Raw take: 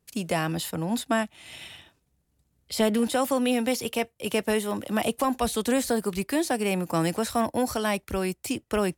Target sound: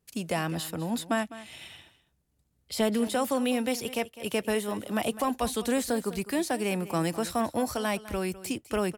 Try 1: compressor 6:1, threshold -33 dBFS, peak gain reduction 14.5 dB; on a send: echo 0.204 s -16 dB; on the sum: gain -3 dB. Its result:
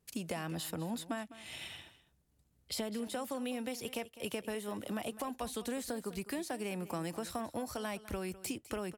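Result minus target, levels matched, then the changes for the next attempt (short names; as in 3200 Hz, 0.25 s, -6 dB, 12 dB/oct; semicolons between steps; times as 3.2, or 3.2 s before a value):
compressor: peak gain reduction +14.5 dB
remove: compressor 6:1, threshold -33 dBFS, peak gain reduction 14.5 dB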